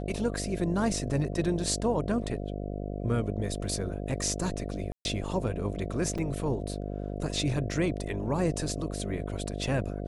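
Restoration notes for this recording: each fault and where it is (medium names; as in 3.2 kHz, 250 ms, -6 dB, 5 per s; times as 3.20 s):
buzz 50 Hz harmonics 14 -35 dBFS
4.92–5.05 s: dropout 131 ms
6.18 s: dropout 5 ms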